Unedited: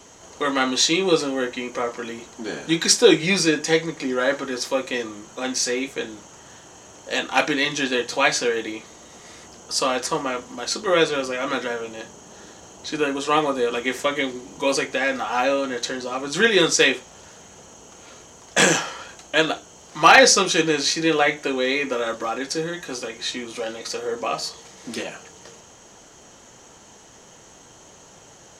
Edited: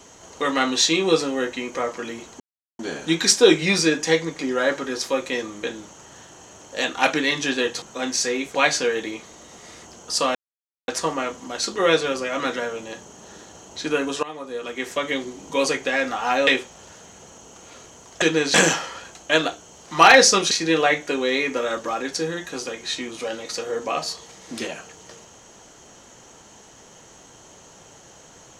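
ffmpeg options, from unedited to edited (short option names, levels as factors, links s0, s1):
-filter_complex "[0:a]asplit=11[s0][s1][s2][s3][s4][s5][s6][s7][s8][s9][s10];[s0]atrim=end=2.4,asetpts=PTS-STARTPTS,afade=t=out:st=2.396:d=0.004:c=hsin,apad=pad_dur=0.39[s11];[s1]atrim=start=2.4:end=5.242,asetpts=PTS-STARTPTS,afade=t=in:d=0.004:c=hsin[s12];[s2]atrim=start=5.968:end=8.162[s13];[s3]atrim=start=5.238:end=5.972[s14];[s4]atrim=start=8.158:end=9.96,asetpts=PTS-STARTPTS,afade=t=out:st=1.798:d=0.004:c=hsin,apad=pad_dur=0.53[s15];[s5]atrim=start=9.96:end=13.31,asetpts=PTS-STARTPTS,afade=t=in:d=0.004:c=hsin,afade=t=out:st=3.346:d=0.004:c=hsin:silence=0.0944061[s16];[s6]atrim=start=13.31:end=15.552,asetpts=PTS-STARTPTS,afade=t=in:d=1.07:silence=0.0944061[s17];[s7]atrim=start=16.828:end=18.582[s18];[s8]atrim=start=20.548:end=20.872[s19];[s9]atrim=start=18.578:end=20.552[s20];[s10]atrim=start=20.868[s21];[s11][s12]concat=n=2:v=0:a=1[s22];[s22][s13]acrossfade=d=0.004:c1=hsin:c2=hsin[s23];[s23][s14]acrossfade=d=0.004:c1=hsin:c2=hsin[s24];[s15][s16][s17]concat=n=3:v=0:a=1[s25];[s24][s25]acrossfade=d=0.004:c1=hsin:c2=hsin[s26];[s26][s18]acrossfade=d=0.004:c1=hsin:c2=hsin[s27];[s27][s19]acrossfade=d=0.004:c1=hsin:c2=hsin[s28];[s28][s20]acrossfade=d=0.004:c1=hsin:c2=hsin[s29];[s29][s21]acrossfade=d=0.004:c1=hsin:c2=hsin"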